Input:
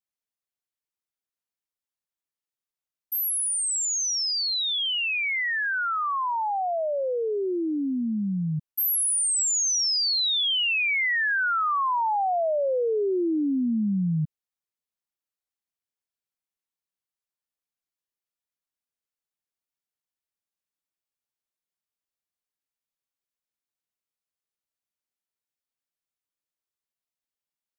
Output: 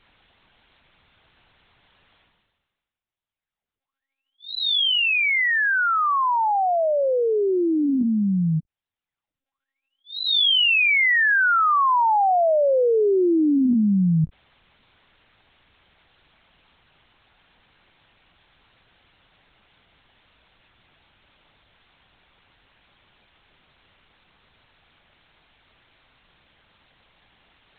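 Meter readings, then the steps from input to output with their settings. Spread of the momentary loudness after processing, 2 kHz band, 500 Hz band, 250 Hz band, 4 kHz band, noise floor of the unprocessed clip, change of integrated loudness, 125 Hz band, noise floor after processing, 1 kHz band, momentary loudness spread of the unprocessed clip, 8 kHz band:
6 LU, +6.0 dB, +6.0 dB, +6.0 dB, +3.0 dB, under -85 dBFS, +5.0 dB, +5.5 dB, under -85 dBFS, +6.0 dB, 6 LU, under -40 dB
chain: reverse; upward compressor, threshold -33 dBFS; reverse; monotone LPC vocoder at 8 kHz 270 Hz; trim +6 dB

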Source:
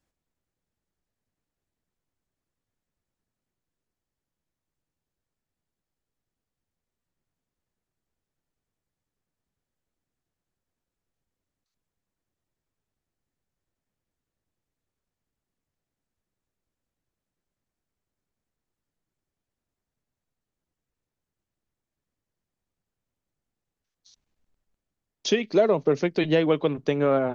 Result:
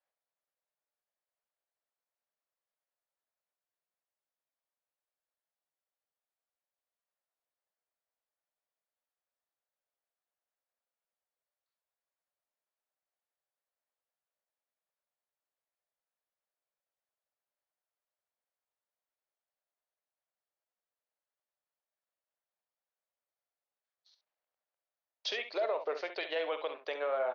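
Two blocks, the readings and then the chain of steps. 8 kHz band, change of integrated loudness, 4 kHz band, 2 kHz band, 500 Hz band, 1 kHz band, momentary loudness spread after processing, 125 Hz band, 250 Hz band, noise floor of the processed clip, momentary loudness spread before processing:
no reading, -12.5 dB, -6.0 dB, -6.5 dB, -12.0 dB, -7.0 dB, 4 LU, under -40 dB, -27.0 dB, under -85 dBFS, 5 LU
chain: elliptic band-pass 570–4600 Hz, stop band 70 dB; peak limiter -22 dBFS, peak gain reduction 10.5 dB; on a send: early reflections 47 ms -12.5 dB, 67 ms -10.5 dB; on the sum: tape noise reduction on one side only decoder only; trim -3.5 dB

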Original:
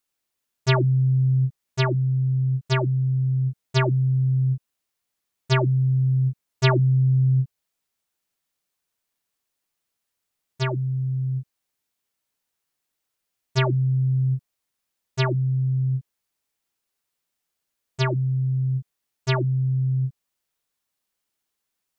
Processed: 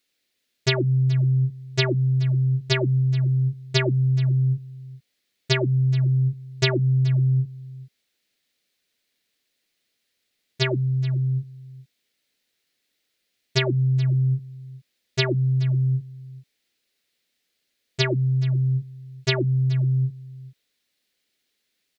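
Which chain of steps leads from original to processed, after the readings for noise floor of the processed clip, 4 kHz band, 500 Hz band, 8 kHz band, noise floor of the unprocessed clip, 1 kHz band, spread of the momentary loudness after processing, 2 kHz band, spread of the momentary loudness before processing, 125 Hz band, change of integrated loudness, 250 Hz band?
-76 dBFS, +5.5 dB, +1.0 dB, no reading, -81 dBFS, -7.0 dB, 10 LU, +2.0 dB, 8 LU, 0.0 dB, +0.5 dB, +1.0 dB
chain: graphic EQ 250/500/1000/2000/4000 Hz +7/+7/-8/+9/+10 dB; compression 6:1, threshold -18 dBFS, peak gain reduction 10.5 dB; delay 426 ms -19 dB; trim +1 dB

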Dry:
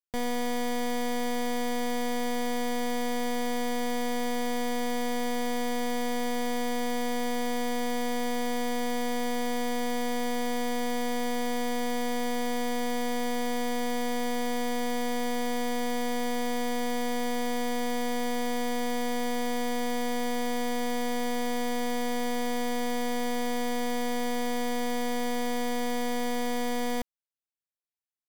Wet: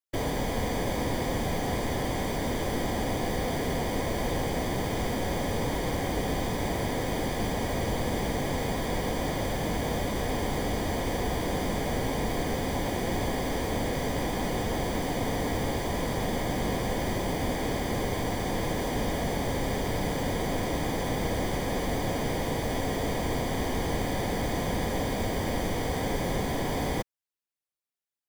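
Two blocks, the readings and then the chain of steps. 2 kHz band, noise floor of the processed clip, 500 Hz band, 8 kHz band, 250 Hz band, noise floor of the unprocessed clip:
0.0 dB, -34 dBFS, +0.5 dB, 0.0 dB, -0.5 dB, -32 dBFS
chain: whisper effect

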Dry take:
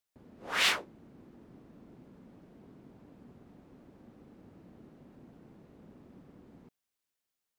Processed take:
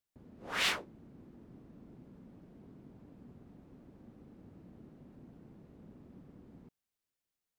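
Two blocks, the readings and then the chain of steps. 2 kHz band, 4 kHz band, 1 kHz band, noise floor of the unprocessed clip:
-4.5 dB, -4.5 dB, -4.0 dB, under -85 dBFS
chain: bass shelf 290 Hz +7.5 dB; trim -4.5 dB

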